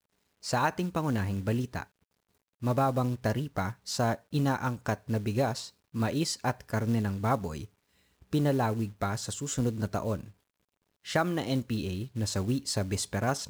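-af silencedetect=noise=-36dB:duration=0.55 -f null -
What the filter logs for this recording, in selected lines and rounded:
silence_start: 1.83
silence_end: 2.63 | silence_duration: 0.80
silence_start: 7.65
silence_end: 8.33 | silence_duration: 0.68
silence_start: 10.24
silence_end: 11.06 | silence_duration: 0.83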